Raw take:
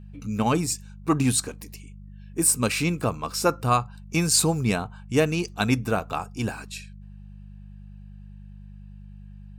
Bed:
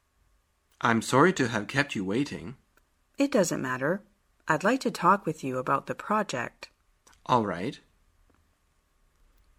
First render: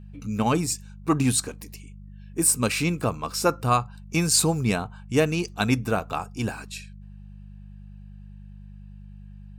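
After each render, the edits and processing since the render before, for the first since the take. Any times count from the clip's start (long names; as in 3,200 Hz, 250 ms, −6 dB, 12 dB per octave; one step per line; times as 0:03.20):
no processing that can be heard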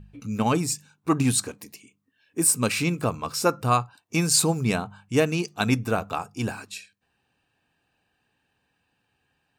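hum removal 50 Hz, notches 4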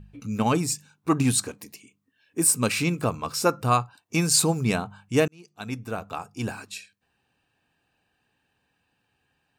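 0:05.28–0:06.72: fade in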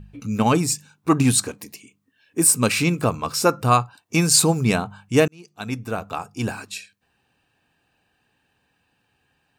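level +4.5 dB
brickwall limiter −3 dBFS, peak gain reduction 1 dB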